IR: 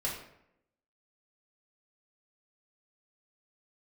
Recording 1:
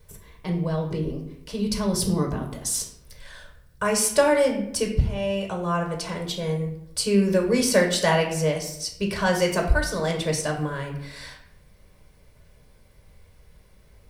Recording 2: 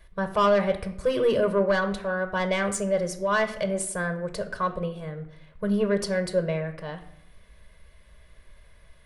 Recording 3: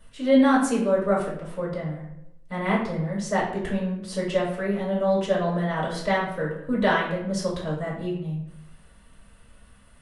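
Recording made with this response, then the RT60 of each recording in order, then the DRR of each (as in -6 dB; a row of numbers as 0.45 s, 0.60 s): 3; 0.80 s, 0.80 s, 0.80 s; 0.5 dB, 6.5 dB, -6.0 dB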